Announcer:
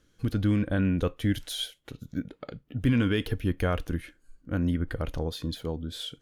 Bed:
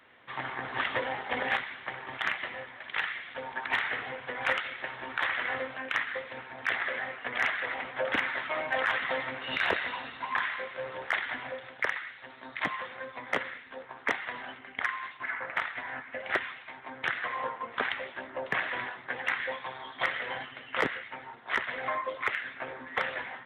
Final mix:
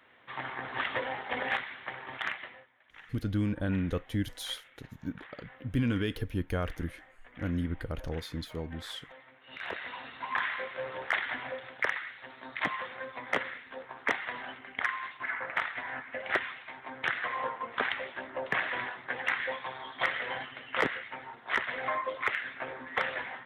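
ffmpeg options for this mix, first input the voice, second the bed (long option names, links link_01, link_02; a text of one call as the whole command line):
ffmpeg -i stem1.wav -i stem2.wav -filter_complex "[0:a]adelay=2900,volume=-5dB[link_01];[1:a]volume=19dB,afade=type=out:start_time=2.17:duration=0.51:silence=0.112202,afade=type=in:start_time=9.42:duration=1.1:silence=0.0891251[link_02];[link_01][link_02]amix=inputs=2:normalize=0" out.wav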